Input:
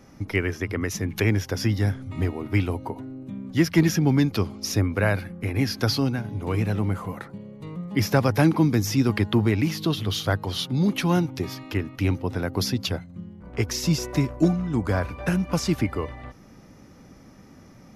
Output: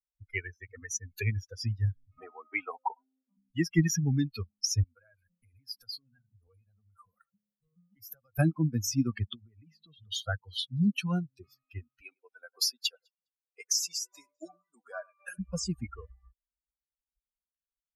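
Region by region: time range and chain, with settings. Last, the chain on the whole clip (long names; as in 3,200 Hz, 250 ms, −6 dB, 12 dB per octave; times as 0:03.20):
0:02.18–0:03.37: high-pass filter 220 Hz + parametric band 950 Hz +13.5 dB 1.4 octaves
0:04.83–0:08.39: downward compressor 10 to 1, threshold −29 dBFS + high-shelf EQ 9,400 Hz +10 dB
0:09.34–0:10.12: high-shelf EQ 3,700 Hz −10.5 dB + downward compressor 8 to 1, threshold −25 dBFS
0:12.01–0:15.39: high-pass filter 420 Hz + high-shelf EQ 8,100 Hz +5.5 dB + delay that swaps between a low-pass and a high-pass 102 ms, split 2,400 Hz, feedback 64%, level −10 dB
whole clip: spectral dynamics exaggerated over time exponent 3; graphic EQ with 15 bands 400 Hz −9 dB, 1,000 Hz −7 dB, 6,300 Hz +8 dB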